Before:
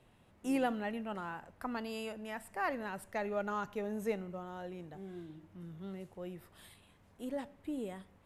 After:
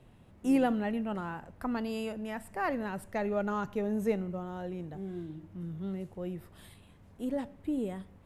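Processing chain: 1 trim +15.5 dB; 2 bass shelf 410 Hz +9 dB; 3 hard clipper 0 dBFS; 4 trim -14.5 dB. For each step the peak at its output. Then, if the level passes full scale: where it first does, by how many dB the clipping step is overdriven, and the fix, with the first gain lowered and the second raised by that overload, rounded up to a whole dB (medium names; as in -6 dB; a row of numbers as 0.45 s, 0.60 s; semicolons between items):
-5.0 dBFS, -3.0 dBFS, -3.0 dBFS, -17.5 dBFS; nothing clips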